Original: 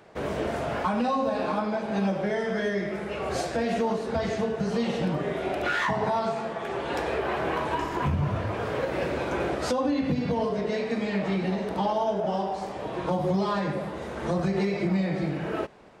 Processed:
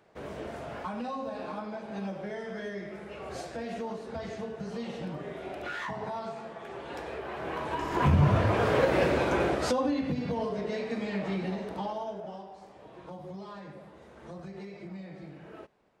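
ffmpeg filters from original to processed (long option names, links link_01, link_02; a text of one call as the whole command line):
ffmpeg -i in.wav -af "volume=4.5dB,afade=type=in:start_time=7.32:duration=0.51:silence=0.501187,afade=type=in:start_time=7.83:duration=0.34:silence=0.375837,afade=type=out:start_time=8.84:duration=1.23:silence=0.334965,afade=type=out:start_time=11.4:duration=1.06:silence=0.251189" out.wav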